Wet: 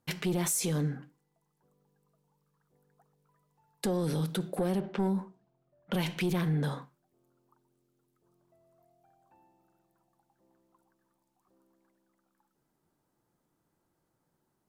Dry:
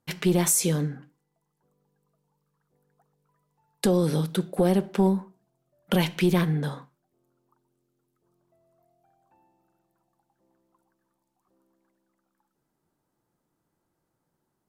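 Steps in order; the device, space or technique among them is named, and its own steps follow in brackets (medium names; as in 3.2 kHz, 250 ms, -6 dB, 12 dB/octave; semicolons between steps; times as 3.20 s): 4.80–6.16 s: level-controlled noise filter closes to 2.5 kHz, open at -21 dBFS; soft clipper into limiter (saturation -15 dBFS, distortion -19 dB; peak limiter -23.5 dBFS, peak gain reduction 7 dB)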